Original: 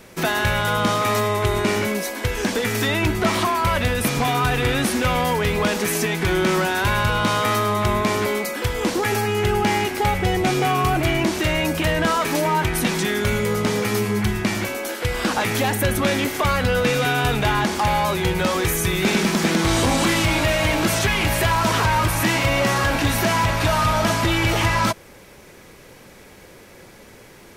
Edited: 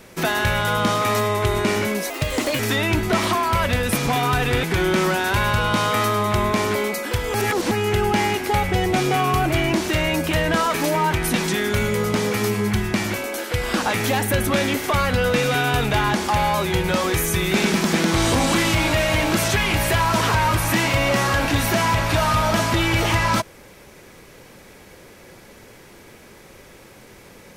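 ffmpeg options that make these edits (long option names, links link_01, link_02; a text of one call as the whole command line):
ffmpeg -i in.wav -filter_complex "[0:a]asplit=6[link_01][link_02][link_03][link_04][link_05][link_06];[link_01]atrim=end=2.104[link_07];[link_02]atrim=start=2.1:end=2.71,asetpts=PTS-STARTPTS,asetrate=54684,aresample=44100,atrim=end_sample=21694,asetpts=PTS-STARTPTS[link_08];[link_03]atrim=start=2.706:end=4.752[link_09];[link_04]atrim=start=6.138:end=8.852[link_10];[link_05]atrim=start=8.848:end=9.222,asetpts=PTS-STARTPTS,areverse[link_11];[link_06]atrim=start=9.218[link_12];[link_07][link_08]acrossfade=duration=0.004:curve1=hsin:curve2=hsin[link_13];[link_13][link_09]acrossfade=duration=0.004:curve1=hsin:curve2=hsin[link_14];[link_14][link_10]acrossfade=duration=0.004:curve1=hsin:curve2=hsin[link_15];[link_15][link_11]acrossfade=duration=0.004:curve1=hsin:curve2=hsin[link_16];[link_16][link_12]acrossfade=duration=0.004:curve1=hsin:curve2=hsin" out.wav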